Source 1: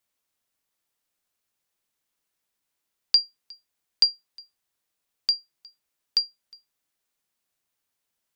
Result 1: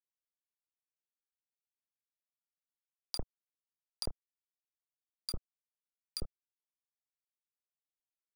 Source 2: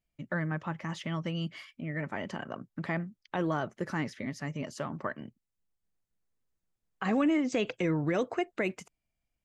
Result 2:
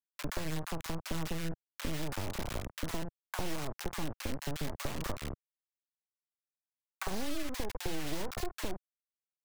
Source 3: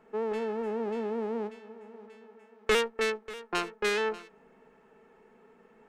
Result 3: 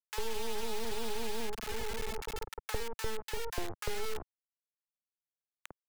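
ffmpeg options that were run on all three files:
-filter_complex "[0:a]firequalizer=gain_entry='entry(190,0);entry(310,12);entry(2600,-13)':delay=0.05:min_phase=1,aexciter=amount=15.6:drive=6.2:freq=6.3k,equalizer=f=8.4k:w=1.5:g=-14,afftfilt=real='re*gte(hypot(re,im),0.0316)':imag='im*gte(hypot(re,im),0.0316)':win_size=1024:overlap=0.75,asplit=2[a][b];[b]adelay=31,volume=-12dB[c];[a][c]amix=inputs=2:normalize=0,acompressor=threshold=-36dB:ratio=4,aeval=exprs='val(0)+0.000501*(sin(2*PI*50*n/s)+sin(2*PI*2*50*n/s)/2+sin(2*PI*3*50*n/s)/3+sin(2*PI*4*50*n/s)/4+sin(2*PI*5*50*n/s)/5)':c=same,acrusher=bits=4:dc=4:mix=0:aa=0.000001,acrossover=split=1100[d][e];[d]adelay=50[f];[f][e]amix=inputs=2:normalize=0,acrossover=split=140|1100[g][h][i];[g]acompressor=threshold=-44dB:ratio=4[j];[h]acompressor=threshold=-54dB:ratio=4[k];[i]acompressor=threshold=-52dB:ratio=4[l];[j][k][l]amix=inputs=3:normalize=0,volume=12dB"

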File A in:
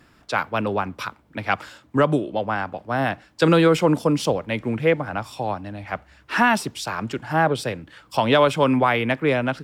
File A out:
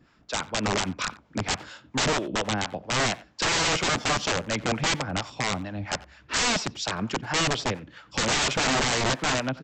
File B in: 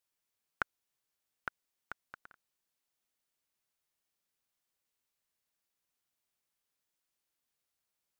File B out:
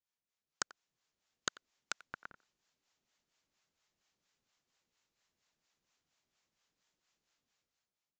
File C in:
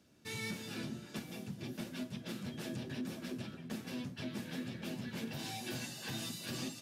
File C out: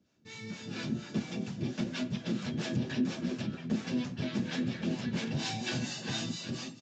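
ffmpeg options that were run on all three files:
-filter_complex "[0:a]equalizer=f=180:t=o:w=1.1:g=3,dynaudnorm=f=200:g=7:m=13.5dB,acrossover=split=550[a][b];[a]aeval=exprs='val(0)*(1-0.7/2+0.7/2*cos(2*PI*4.3*n/s))':c=same[c];[b]aeval=exprs='val(0)*(1-0.7/2-0.7/2*cos(2*PI*4.3*n/s))':c=same[d];[c][d]amix=inputs=2:normalize=0,aresample=16000,aeval=exprs='(mod(5.96*val(0)+1,2)-1)/5.96':c=same,aresample=44100,asplit=2[e][f];[f]adelay=90,highpass=300,lowpass=3.4k,asoftclip=type=hard:threshold=-20.5dB,volume=-18dB[g];[e][g]amix=inputs=2:normalize=0,volume=-3.5dB"

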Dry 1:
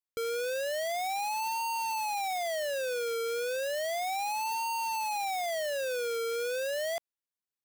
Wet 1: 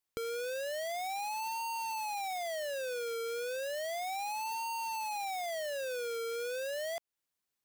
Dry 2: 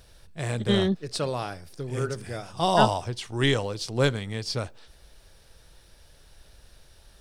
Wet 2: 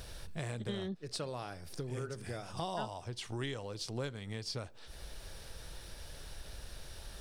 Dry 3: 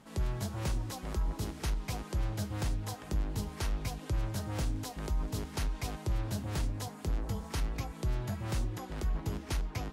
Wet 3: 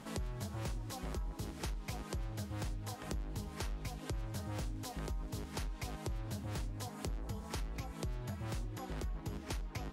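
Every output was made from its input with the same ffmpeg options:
-af "acompressor=threshold=-46dB:ratio=5,volume=6.5dB"

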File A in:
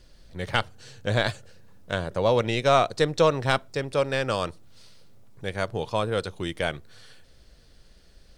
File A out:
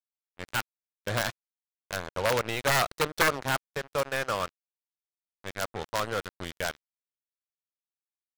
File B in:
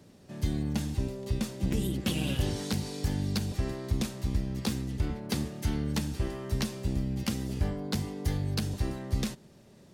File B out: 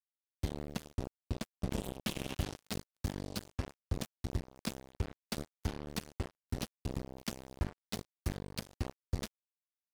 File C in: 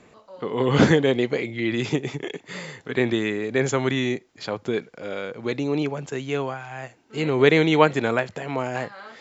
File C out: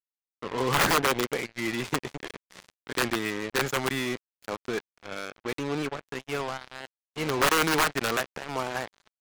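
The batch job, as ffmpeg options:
-af "aeval=exprs='(mod(3.98*val(0)+1,2)-1)/3.98':c=same,adynamicequalizer=threshold=0.01:dfrequency=1300:dqfactor=0.88:tfrequency=1300:tqfactor=0.88:attack=5:release=100:ratio=0.375:range=4:mode=boostabove:tftype=bell,acrusher=bits=3:mix=0:aa=0.5,volume=-7.5dB"

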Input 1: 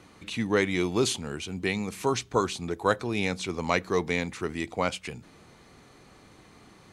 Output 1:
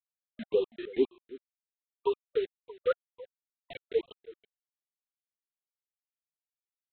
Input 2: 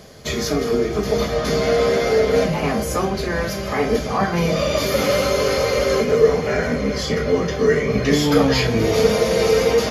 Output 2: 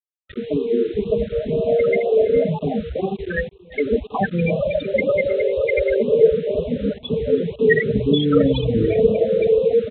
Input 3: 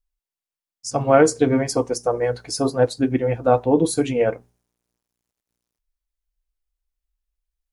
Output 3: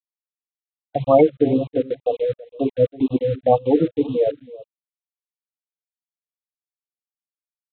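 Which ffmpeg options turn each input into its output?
-af "aemphasis=mode=production:type=75fm,afftfilt=real='re*gte(hypot(re,im),0.355)':imag='im*gte(hypot(re,im),0.355)':win_size=1024:overlap=0.75,agate=range=-14dB:threshold=-28dB:ratio=16:detection=peak,equalizer=f=2k:t=o:w=0.67:g=9,aresample=8000,acrusher=bits=6:mix=0:aa=0.000001,aresample=44100,aecho=1:1:327:0.112,afftfilt=real='re*(1-between(b*sr/1024,840*pow(1800/840,0.5+0.5*sin(2*PI*2*pts/sr))/1.41,840*pow(1800/840,0.5+0.5*sin(2*PI*2*pts/sr))*1.41))':imag='im*(1-between(b*sr/1024,840*pow(1800/840,0.5+0.5*sin(2*PI*2*pts/sr))/1.41,840*pow(1800/840,0.5+0.5*sin(2*PI*2*pts/sr))*1.41))':win_size=1024:overlap=0.75,volume=1.5dB"

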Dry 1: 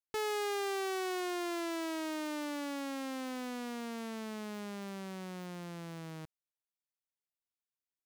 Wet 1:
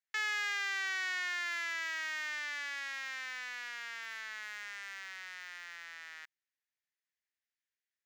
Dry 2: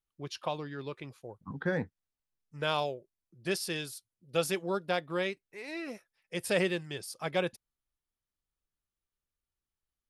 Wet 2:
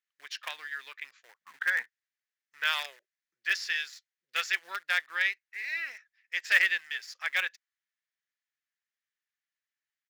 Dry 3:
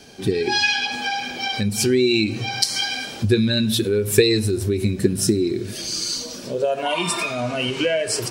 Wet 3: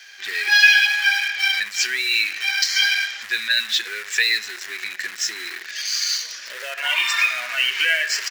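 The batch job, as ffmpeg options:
-filter_complex "[0:a]aresample=16000,aresample=44100,asplit=2[a][b];[b]acrusher=bits=5:dc=4:mix=0:aa=0.000001,volume=-6dB[c];[a][c]amix=inputs=2:normalize=0,apsyclip=10dB,highpass=f=1.8k:t=q:w=4.3,volume=-11.5dB"

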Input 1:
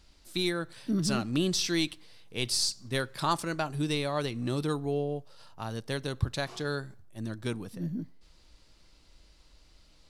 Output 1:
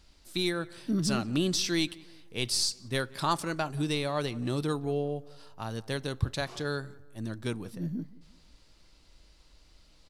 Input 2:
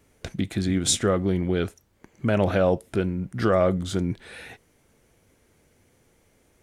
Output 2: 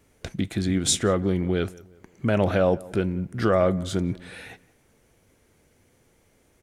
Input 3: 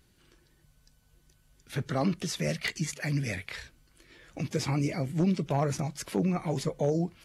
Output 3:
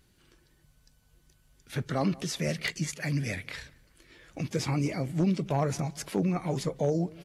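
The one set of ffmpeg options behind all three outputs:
-filter_complex "[0:a]asplit=2[a][b];[b]adelay=178,lowpass=f=2k:p=1,volume=-21dB,asplit=2[c][d];[d]adelay=178,lowpass=f=2k:p=1,volume=0.42,asplit=2[e][f];[f]adelay=178,lowpass=f=2k:p=1,volume=0.42[g];[a][c][e][g]amix=inputs=4:normalize=0"

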